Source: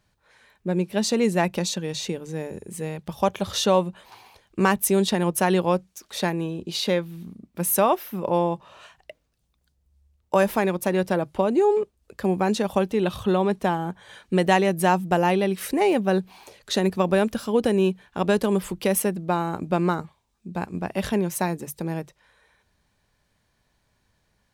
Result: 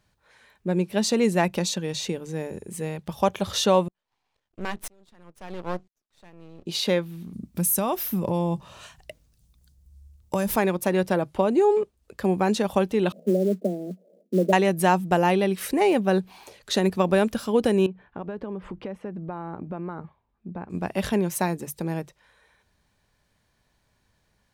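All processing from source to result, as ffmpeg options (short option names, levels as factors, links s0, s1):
-filter_complex "[0:a]asettb=1/sr,asplit=3[s0][s1][s2];[s0]atrim=end=3.884[s3];[s1]atrim=start=3.88:end=6.66,asetpts=PTS-STARTPTS,afade=t=in:d=0.004:c=qsin,afade=t=out:st=2.776:d=0.004:c=qsin,lowpass=6800,aeval=exprs='max(val(0),0)':c=same,aeval=exprs='val(0)*pow(10,-37*if(lt(mod(-1*n/s,1),2*abs(-1)/1000),1-mod(-1*n/s,1)/(2*abs(-1)/1000),(mod(-1*n/s,1)-2*abs(-1)/1000)/(1-2*abs(-1)/1000))/20)':c=same[s4];[s2]atrim=start=6.656[s5];[s3][s4]acrossfade=d=0.004:c1=hsin:c2=qsin[s6];[s6][s5]acrossfade=d=0.004:c1=qsin:c2=hsin,asettb=1/sr,asplit=3[s7][s8][s9];[s7]atrim=end=7.334[s10];[s8]atrim=start=7.33:end=10.56,asetpts=PTS-STARTPTS,afade=t=in:d=0.004:c=qsin,afade=t=out:st=3.226:d=0.004:c=qsin,bass=f=250:g=12,treble=f=4000:g=10,acompressor=threshold=0.0794:ratio=3:attack=3.2:release=140:knee=1:detection=peak[s11];[s9]atrim=start=10.556[s12];[s10][s11]acrossfade=d=0.004:c1=hsin:c2=qsin[s13];[s13][s12]acrossfade=d=0.004:c1=qsin:c2=hsin,asettb=1/sr,asplit=3[s14][s15][s16];[s14]atrim=end=13.124[s17];[s15]atrim=start=13.12:end=14.53,asetpts=PTS-STARTPTS,afade=t=in:d=0.004:c=qsin,afade=t=out:st=1.406:d=0.004:c=qsin,asuperpass=centerf=340:order=20:qfactor=0.71,acrusher=bits=7:mode=log:mix=0:aa=0.000001[s18];[s16]atrim=start=14.526[s19];[s17][s18]acrossfade=d=0.004:c1=hsin:c2=qsin[s20];[s20][s19]acrossfade=d=0.004:c1=qsin:c2=hsin,asettb=1/sr,asplit=3[s21][s22][s23];[s21]atrim=end=17.864[s24];[s22]atrim=start=17.86:end=20.7,asetpts=PTS-STARTPTS,afade=t=in:d=0.004:c=qsin,afade=t=out:st=2.836:d=0.004:c=qsin,acompressor=threshold=0.0316:ratio=5:attack=3.2:release=140:knee=1:detection=peak,lowpass=1700[s25];[s23]atrim=start=20.696[s26];[s24][s25]acrossfade=d=0.004:c1=hsin:c2=qsin[s27];[s27][s26]acrossfade=d=0.004:c1=qsin:c2=hsin"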